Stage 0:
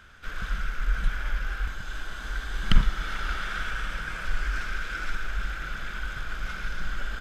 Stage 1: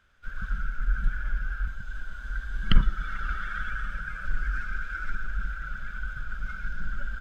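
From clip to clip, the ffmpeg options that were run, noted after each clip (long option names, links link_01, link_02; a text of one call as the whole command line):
ffmpeg -i in.wav -af "afftdn=noise_reduction=14:noise_floor=-32,equalizer=frequency=570:width=7.2:gain=4.5" out.wav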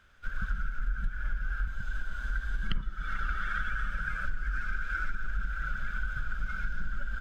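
ffmpeg -i in.wav -af "acompressor=threshold=-30dB:ratio=6,volume=3.5dB" out.wav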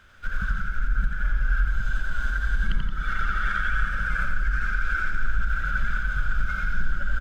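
ffmpeg -i in.wav -filter_complex "[0:a]alimiter=level_in=0.5dB:limit=-24dB:level=0:latency=1,volume=-0.5dB,asplit=2[link_01][link_02];[link_02]aecho=0:1:86|173:0.562|0.316[link_03];[link_01][link_03]amix=inputs=2:normalize=0,volume=7.5dB" out.wav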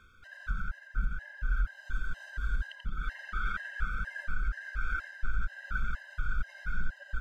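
ffmpeg -i in.wav -af "areverse,acompressor=mode=upward:threshold=-29dB:ratio=2.5,areverse,afftfilt=real='re*gt(sin(2*PI*2.1*pts/sr)*(1-2*mod(floor(b*sr/1024/530),2)),0)':imag='im*gt(sin(2*PI*2.1*pts/sr)*(1-2*mod(floor(b*sr/1024/530),2)),0)':win_size=1024:overlap=0.75,volume=-6.5dB" out.wav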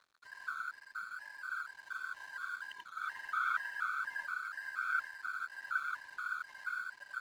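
ffmpeg -i in.wav -af "highpass=frequency=1000:width_type=q:width=6.8,aeval=exprs='sgn(val(0))*max(abs(val(0))-0.00224,0)':channel_layout=same,volume=-3dB" out.wav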